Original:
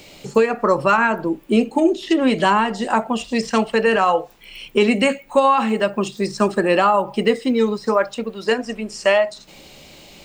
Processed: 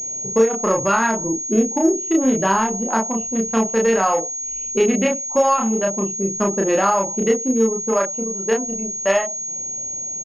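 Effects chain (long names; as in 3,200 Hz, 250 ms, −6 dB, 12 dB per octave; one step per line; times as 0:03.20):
adaptive Wiener filter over 25 samples
double-tracking delay 31 ms −2 dB
switching amplifier with a slow clock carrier 6,600 Hz
level −3 dB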